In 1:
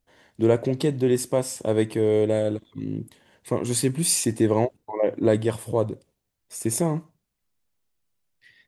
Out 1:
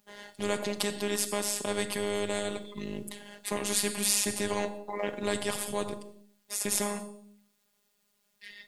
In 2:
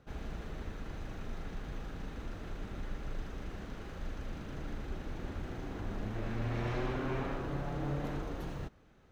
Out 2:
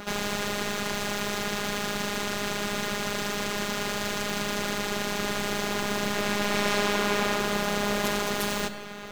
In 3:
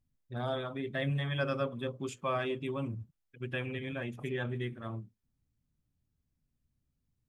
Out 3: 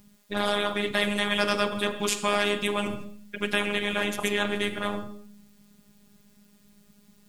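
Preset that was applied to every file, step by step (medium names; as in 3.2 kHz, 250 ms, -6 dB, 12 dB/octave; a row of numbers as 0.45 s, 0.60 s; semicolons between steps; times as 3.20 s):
high-pass 94 Hz 24 dB/octave; robot voice 205 Hz; Schroeder reverb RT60 0.52 s, combs from 30 ms, DRR 14 dB; spectrum-flattening compressor 2:1; peak normalisation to -6 dBFS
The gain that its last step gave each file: -0.5 dB, +18.0 dB, +15.0 dB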